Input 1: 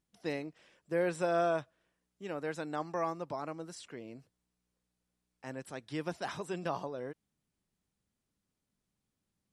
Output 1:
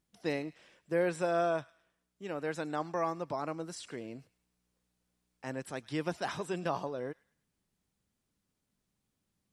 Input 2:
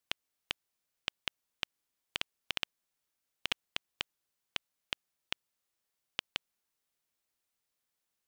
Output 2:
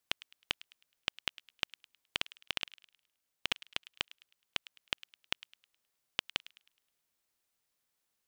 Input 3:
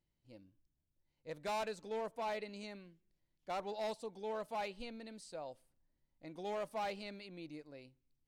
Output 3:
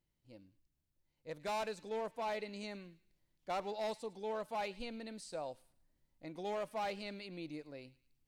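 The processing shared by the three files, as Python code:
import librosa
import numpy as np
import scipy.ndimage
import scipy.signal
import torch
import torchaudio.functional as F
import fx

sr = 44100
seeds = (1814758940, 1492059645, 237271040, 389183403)

p1 = fx.rider(x, sr, range_db=4, speed_s=0.5)
p2 = x + (p1 * 10.0 ** (-1.0 / 20.0))
p3 = fx.echo_wet_highpass(p2, sr, ms=105, feedback_pct=36, hz=1700.0, wet_db=-17.5)
y = p3 * 10.0 ** (-4.0 / 20.0)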